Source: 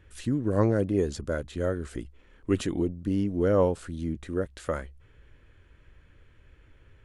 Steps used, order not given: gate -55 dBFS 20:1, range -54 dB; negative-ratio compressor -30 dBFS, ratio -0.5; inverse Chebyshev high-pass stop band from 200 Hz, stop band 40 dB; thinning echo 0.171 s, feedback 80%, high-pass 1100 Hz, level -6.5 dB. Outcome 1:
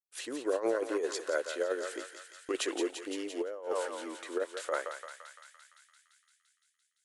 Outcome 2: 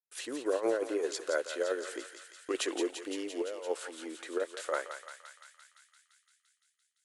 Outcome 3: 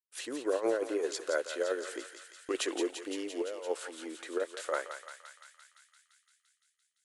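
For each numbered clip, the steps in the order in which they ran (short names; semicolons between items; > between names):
inverse Chebyshev high-pass > gate > thinning echo > negative-ratio compressor; inverse Chebyshev high-pass > negative-ratio compressor > gate > thinning echo; inverse Chebyshev high-pass > gate > negative-ratio compressor > thinning echo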